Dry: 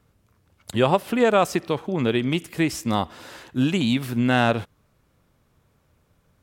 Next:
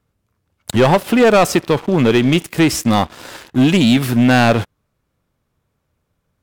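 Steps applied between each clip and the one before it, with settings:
leveller curve on the samples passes 3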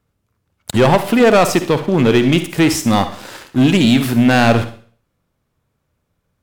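convolution reverb RT60 0.45 s, pre-delay 47 ms, DRR 10 dB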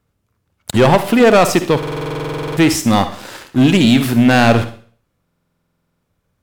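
buffer that repeats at 0:01.78/0:05.24, samples 2,048, times 16
level +1 dB

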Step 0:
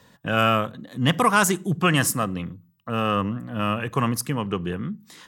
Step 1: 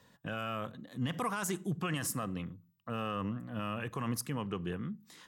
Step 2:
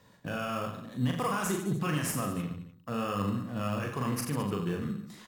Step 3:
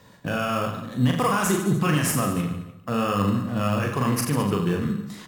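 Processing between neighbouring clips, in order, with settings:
brickwall limiter −16 dBFS, peak gain reduction 11.5 dB; level −9 dB
reverse bouncing-ball delay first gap 40 ms, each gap 1.2×, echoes 5; in parallel at −8 dB: sample-rate reduction 4,000 Hz, jitter 0%
dense smooth reverb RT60 1 s, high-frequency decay 0.7×, pre-delay 120 ms, DRR 16.5 dB; level +8.5 dB

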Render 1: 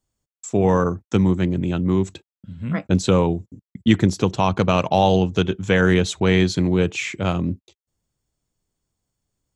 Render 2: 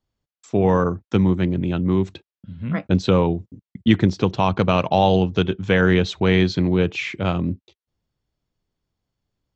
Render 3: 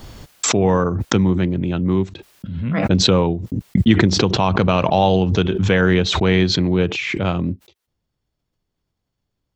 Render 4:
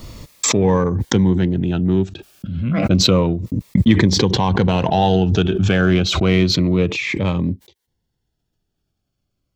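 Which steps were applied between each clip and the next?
low-pass filter 5,000 Hz 24 dB per octave
background raised ahead of every attack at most 34 dB per second; level +1 dB
in parallel at −9 dB: soft clipping −17.5 dBFS, distortion −8 dB; on the sum: phaser whose notches keep moving one way falling 0.3 Hz

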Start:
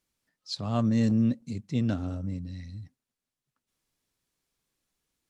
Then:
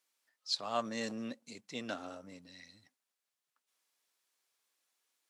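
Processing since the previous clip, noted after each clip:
high-pass filter 640 Hz 12 dB per octave
level +1 dB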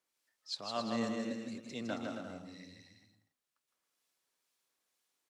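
low-shelf EQ 470 Hz +7 dB
two-band tremolo in antiphase 2.1 Hz, depth 50%, crossover 2,000 Hz
bouncing-ball delay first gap 160 ms, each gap 0.7×, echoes 5
level −1.5 dB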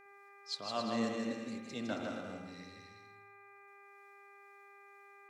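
hum with harmonics 400 Hz, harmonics 6, −60 dBFS −1 dB per octave
on a send at −7 dB: convolution reverb RT60 1.1 s, pre-delay 57 ms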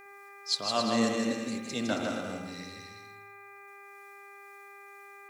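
high-shelf EQ 6,500 Hz +12 dB
level +7.5 dB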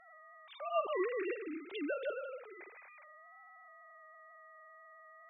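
three sine waves on the formant tracks
level −7.5 dB

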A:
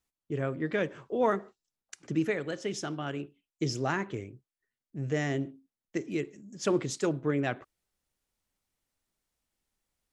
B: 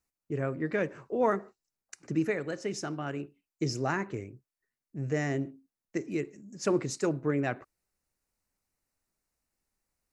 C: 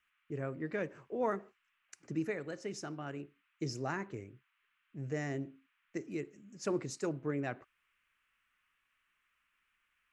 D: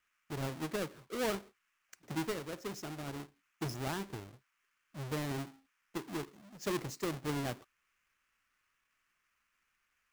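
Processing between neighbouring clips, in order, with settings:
parametric band 3,300 Hz −14.5 dB 0.26 octaves
noise in a band 1,100–2,900 Hz −72 dBFS; level −7 dB
each half-wave held at its own peak; level −4.5 dB

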